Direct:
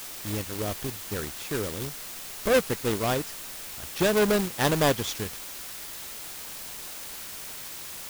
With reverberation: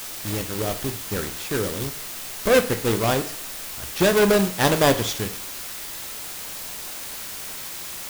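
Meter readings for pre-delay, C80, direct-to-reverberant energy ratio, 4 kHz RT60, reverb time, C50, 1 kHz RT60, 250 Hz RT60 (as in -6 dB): 10 ms, 17.0 dB, 8.0 dB, 0.45 s, 0.55 s, 13.5 dB, 0.55 s, 0.50 s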